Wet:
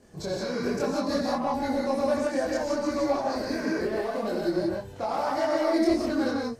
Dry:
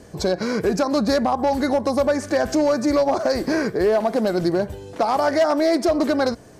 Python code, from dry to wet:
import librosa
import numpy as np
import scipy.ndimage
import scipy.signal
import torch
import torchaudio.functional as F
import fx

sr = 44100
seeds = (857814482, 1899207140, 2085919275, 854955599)

y = fx.chorus_voices(x, sr, voices=4, hz=0.65, base_ms=24, depth_ms=4.5, mix_pct=55)
y = fx.rev_gated(y, sr, seeds[0], gate_ms=200, shape='rising', drr_db=-1.5)
y = y * 10.0 ** (-7.5 / 20.0)